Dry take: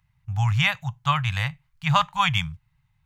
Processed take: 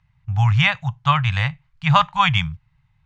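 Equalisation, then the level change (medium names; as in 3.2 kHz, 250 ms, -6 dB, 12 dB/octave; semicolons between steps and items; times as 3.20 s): distance through air 110 m; +5.5 dB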